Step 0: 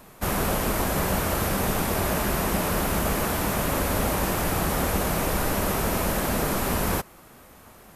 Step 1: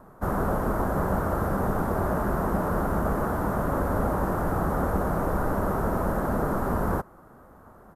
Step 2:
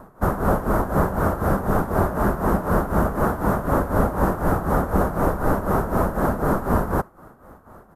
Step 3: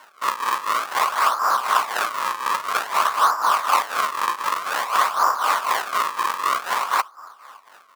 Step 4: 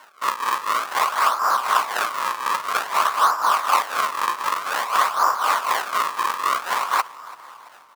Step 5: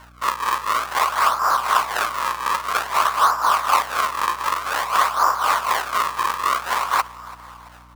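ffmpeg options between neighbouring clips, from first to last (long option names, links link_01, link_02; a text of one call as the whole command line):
ffmpeg -i in.wav -af "firequalizer=gain_entry='entry(1400,0);entry(2400,-23);entry(12000,-16)':delay=0.05:min_phase=1" out.wav
ffmpeg -i in.wav -af "tremolo=f=4:d=0.74,volume=8dB" out.wav
ffmpeg -i in.wav -af "acrusher=samples=35:mix=1:aa=0.000001:lfo=1:lforange=56:lforate=0.52,highpass=frequency=1100:width_type=q:width=4.9" out.wav
ffmpeg -i in.wav -filter_complex "[0:a]asplit=5[link_01][link_02][link_03][link_04][link_05];[link_02]adelay=335,afreqshift=-35,volume=-21dB[link_06];[link_03]adelay=670,afreqshift=-70,volume=-26.2dB[link_07];[link_04]adelay=1005,afreqshift=-105,volume=-31.4dB[link_08];[link_05]adelay=1340,afreqshift=-140,volume=-36.6dB[link_09];[link_01][link_06][link_07][link_08][link_09]amix=inputs=5:normalize=0" out.wav
ffmpeg -i in.wav -af "aeval=exprs='val(0)+0.00355*(sin(2*PI*60*n/s)+sin(2*PI*2*60*n/s)/2+sin(2*PI*3*60*n/s)/3+sin(2*PI*4*60*n/s)/4+sin(2*PI*5*60*n/s)/5)':channel_layout=same,volume=1dB" out.wav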